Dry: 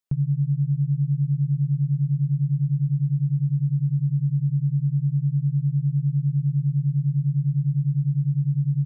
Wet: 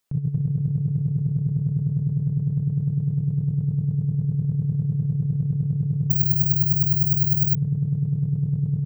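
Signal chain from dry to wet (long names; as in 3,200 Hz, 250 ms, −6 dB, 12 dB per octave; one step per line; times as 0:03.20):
compressor whose output falls as the input rises −27 dBFS, ratio −0.5
repeating echo 232 ms, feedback 22%, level −4 dB
0:06.10–0:07.55: bad sample-rate conversion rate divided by 2×, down none, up zero stuff
level +4.5 dB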